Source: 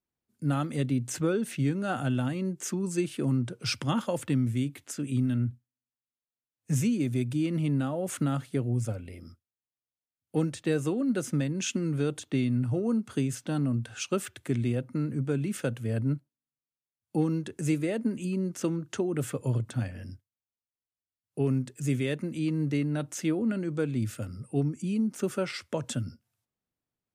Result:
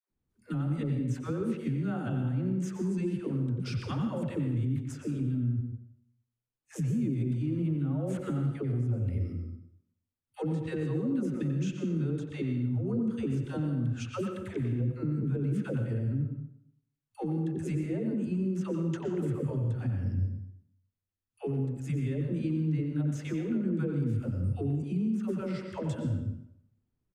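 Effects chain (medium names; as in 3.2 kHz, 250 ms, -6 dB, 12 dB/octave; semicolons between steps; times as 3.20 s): phase dispersion lows, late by 108 ms, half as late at 500 Hz; compression, threshold -34 dBFS, peak gain reduction 12 dB; tilt EQ -3.5 dB/octave; peak limiter -24.5 dBFS, peak gain reduction 7.5 dB; peaking EQ 650 Hz -4.5 dB 0.52 oct; speakerphone echo 90 ms, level -7 dB; plate-style reverb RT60 0.71 s, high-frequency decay 0.85×, pre-delay 105 ms, DRR 6.5 dB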